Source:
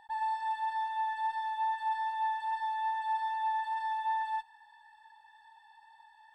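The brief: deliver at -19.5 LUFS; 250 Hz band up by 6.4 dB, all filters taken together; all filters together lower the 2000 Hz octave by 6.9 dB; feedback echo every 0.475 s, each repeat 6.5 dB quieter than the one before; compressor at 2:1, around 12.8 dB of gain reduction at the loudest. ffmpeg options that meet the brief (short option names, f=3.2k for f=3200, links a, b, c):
-af "equalizer=f=250:t=o:g=8.5,equalizer=f=2k:t=o:g=-8,acompressor=threshold=-55dB:ratio=2,aecho=1:1:475|950|1425|1900|2375|2850:0.473|0.222|0.105|0.0491|0.0231|0.0109,volume=26dB"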